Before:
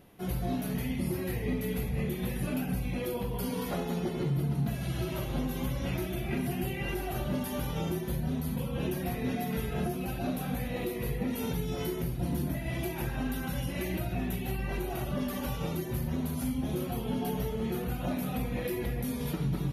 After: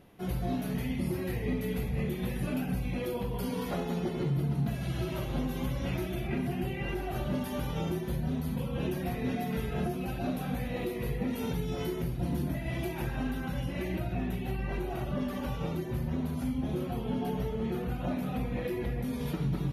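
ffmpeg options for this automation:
-af "asetnsamples=n=441:p=0,asendcmd='6.27 lowpass f 3000;7.13 lowpass f 5400;13.31 lowpass f 2800;19.13 lowpass f 5200',lowpass=f=6.2k:p=1"

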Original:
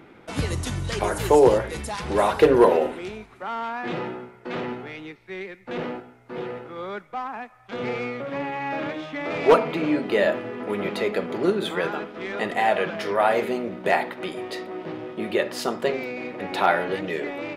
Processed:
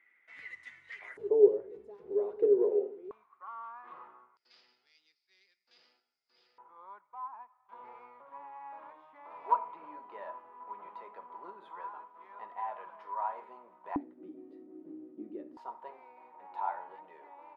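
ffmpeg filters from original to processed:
-af "asetnsamples=n=441:p=0,asendcmd='1.17 bandpass f 410;3.11 bandpass f 1100;4.37 bandpass f 4900;6.58 bandpass f 980;13.96 bandpass f 290;15.57 bandpass f 930',bandpass=f=2k:t=q:w=18:csg=0"

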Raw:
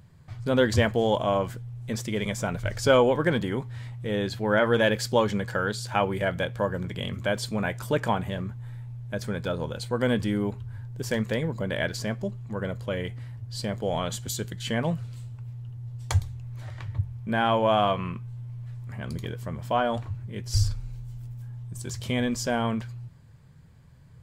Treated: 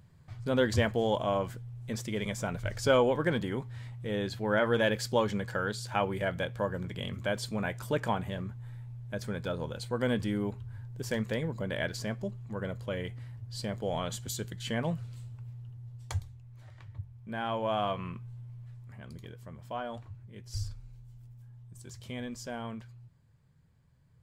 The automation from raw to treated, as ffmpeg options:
-af "volume=2dB,afade=t=out:st=15.41:d=1.01:silence=0.398107,afade=t=in:st=17.14:d=1.11:silence=0.446684,afade=t=out:st=18.25:d=0.83:silence=0.473151"

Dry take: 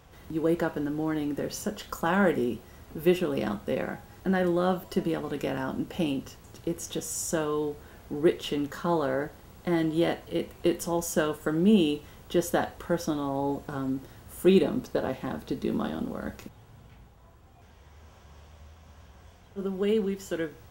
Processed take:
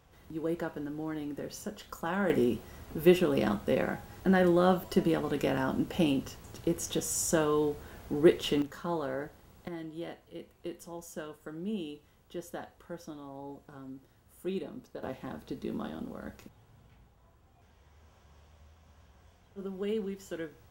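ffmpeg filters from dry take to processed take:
-af "asetnsamples=n=441:p=0,asendcmd='2.3 volume volume 1dB;8.62 volume volume -7dB;9.68 volume volume -15dB;15.03 volume volume -7.5dB',volume=-7.5dB"

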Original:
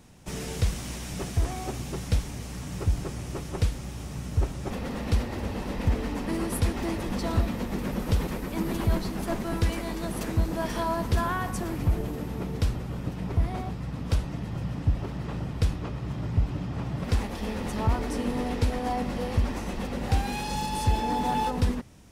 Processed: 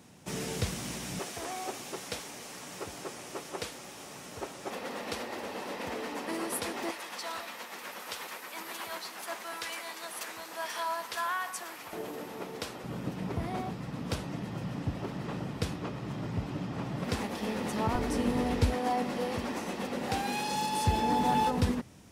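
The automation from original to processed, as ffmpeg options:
-af "asetnsamples=n=441:p=0,asendcmd='1.19 highpass f 430;6.91 highpass f 1000;11.93 highpass f 420;12.84 highpass f 170;17.95 highpass f 60;18.74 highpass f 230;20.87 highpass f 95',highpass=140"

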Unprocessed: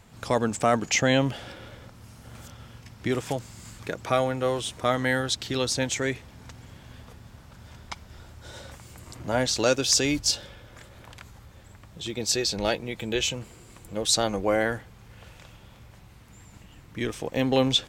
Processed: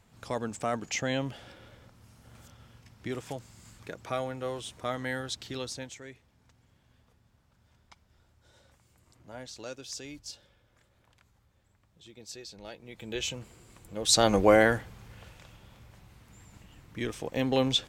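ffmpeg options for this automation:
-af "volume=15dB,afade=t=out:st=5.53:d=0.46:silence=0.316228,afade=t=in:st=12.74:d=0.57:silence=0.223872,afade=t=in:st=13.99:d=0.37:silence=0.281838,afade=t=out:st=14.36:d=1:silence=0.354813"

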